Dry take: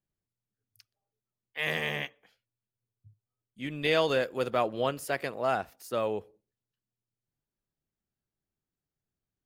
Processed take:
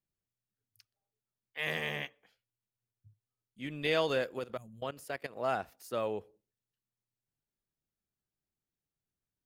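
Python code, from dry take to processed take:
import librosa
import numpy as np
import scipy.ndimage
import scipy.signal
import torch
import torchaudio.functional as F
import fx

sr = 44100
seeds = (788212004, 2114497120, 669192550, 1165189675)

y = fx.spec_box(x, sr, start_s=4.57, length_s=0.25, low_hz=220.0, high_hz=6100.0, gain_db=-28)
y = fx.level_steps(y, sr, step_db=16, at=(4.39, 5.36))
y = y * 10.0 ** (-4.0 / 20.0)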